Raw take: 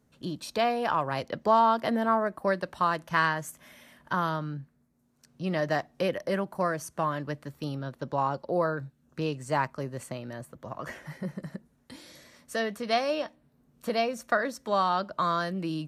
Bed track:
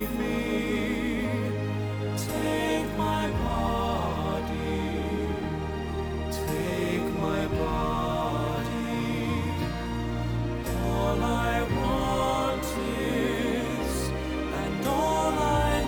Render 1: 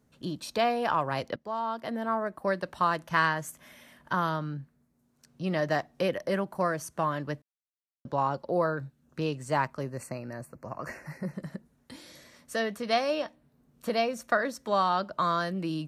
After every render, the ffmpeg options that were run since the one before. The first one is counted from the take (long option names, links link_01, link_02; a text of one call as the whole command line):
ffmpeg -i in.wav -filter_complex "[0:a]asettb=1/sr,asplit=3[link_01][link_02][link_03];[link_01]atrim=end=9.904[link_04];[link_02]atrim=start=9.9:end=11.34,asetpts=PTS-STARTPTS,afade=type=in:duration=0.004:curve=qsin,afade=type=out:start_time=1.436:duration=0.004:curve=qsin,asuperstop=centerf=3400:order=12:qfactor=2.5[link_05];[link_03]atrim=start=11.336[link_06];[link_04][link_05]acrossfade=duration=0.004:curve1=hsin:curve2=qsin[link_07];[link_07][link_06]acrossfade=duration=0.004:curve1=qsin:curve2=hsin,asplit=4[link_08][link_09][link_10][link_11];[link_08]atrim=end=1.36,asetpts=PTS-STARTPTS,afade=type=out:start_time=1.356:duration=0.004:curve=hsin:silence=0.149624[link_12];[link_09]atrim=start=1.36:end=7.42,asetpts=PTS-STARTPTS,afade=type=in:duration=1.44:silence=0.149624,afade=type=out:start_time=6.056:duration=0.004:curve=hsin[link_13];[link_10]atrim=start=7.42:end=8.05,asetpts=PTS-STARTPTS,volume=0[link_14];[link_11]atrim=start=8.05,asetpts=PTS-STARTPTS,afade=type=in:duration=0.004:curve=hsin[link_15];[link_12][link_13][link_14][link_15]concat=n=4:v=0:a=1" out.wav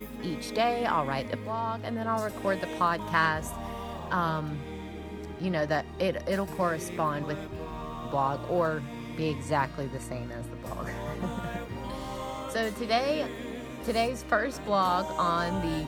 ffmpeg -i in.wav -i bed.wav -filter_complex "[1:a]volume=-10.5dB[link_01];[0:a][link_01]amix=inputs=2:normalize=0" out.wav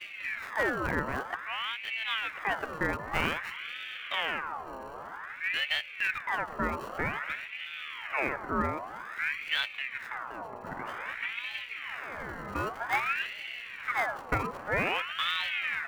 ffmpeg -i in.wav -filter_complex "[0:a]acrossover=split=370|1600[link_01][link_02][link_03];[link_03]acrusher=samples=31:mix=1:aa=0.000001[link_04];[link_01][link_02][link_04]amix=inputs=3:normalize=0,aeval=exprs='val(0)*sin(2*PI*1600*n/s+1600*0.55/0.52*sin(2*PI*0.52*n/s))':channel_layout=same" out.wav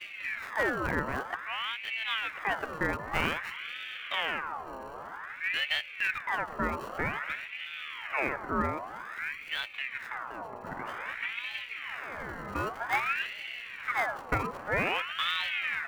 ffmpeg -i in.wav -filter_complex "[0:a]asettb=1/sr,asplit=3[link_01][link_02][link_03];[link_01]atrim=end=9.194[link_04];[link_02]atrim=start=9.19:end=9.74,asetpts=PTS-STARTPTS,afade=type=in:duration=0.004:curve=qsin,afade=type=out:start_time=0.546:duration=0.004:curve=qsin,equalizer=frequency=2900:width_type=o:width=3:gain=-5[link_05];[link_03]atrim=start=9.736[link_06];[link_04][link_05]acrossfade=duration=0.004:curve1=hsin:curve2=qsin[link_07];[link_07][link_06]acrossfade=duration=0.004:curve1=qsin:curve2=hsin" out.wav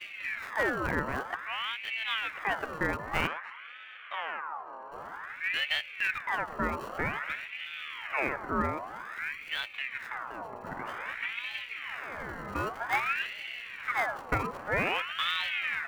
ffmpeg -i in.wav -filter_complex "[0:a]asplit=3[link_01][link_02][link_03];[link_01]afade=type=out:start_time=3.26:duration=0.02[link_04];[link_02]bandpass=frequency=1000:width_type=q:width=1.2,afade=type=in:start_time=3.26:duration=0.02,afade=type=out:start_time=4.91:duration=0.02[link_05];[link_03]afade=type=in:start_time=4.91:duration=0.02[link_06];[link_04][link_05][link_06]amix=inputs=3:normalize=0" out.wav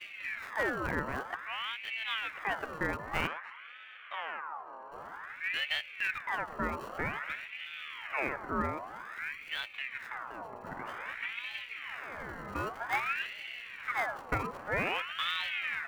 ffmpeg -i in.wav -af "volume=-3dB" out.wav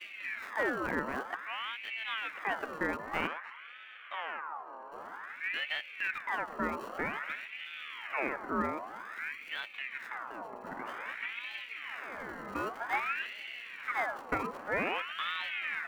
ffmpeg -i in.wav -filter_complex "[0:a]acrossover=split=2800[link_01][link_02];[link_02]acompressor=threshold=-46dB:ratio=4:attack=1:release=60[link_03];[link_01][link_03]amix=inputs=2:normalize=0,lowshelf=frequency=170:width_type=q:width=1.5:gain=-8" out.wav